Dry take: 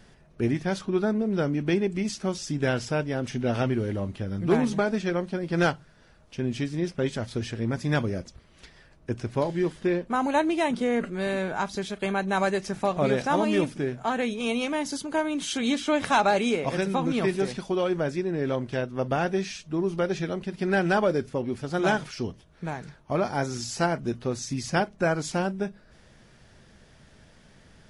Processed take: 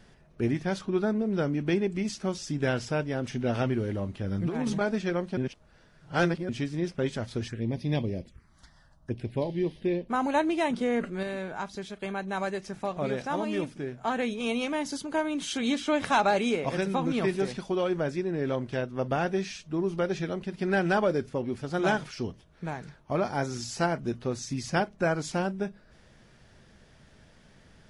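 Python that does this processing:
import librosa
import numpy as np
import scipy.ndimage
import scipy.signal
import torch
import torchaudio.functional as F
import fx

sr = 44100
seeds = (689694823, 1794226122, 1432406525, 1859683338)

y = fx.over_compress(x, sr, threshold_db=-26.0, ratio=-1.0, at=(4.24, 4.81))
y = fx.env_phaser(y, sr, low_hz=370.0, high_hz=1400.0, full_db=-27.0, at=(7.48, 10.09))
y = fx.edit(y, sr, fx.reverse_span(start_s=5.37, length_s=1.12),
    fx.clip_gain(start_s=11.23, length_s=2.8, db=-4.5), tone=tone)
y = fx.high_shelf(y, sr, hz=8400.0, db=-4.0)
y = y * librosa.db_to_amplitude(-2.0)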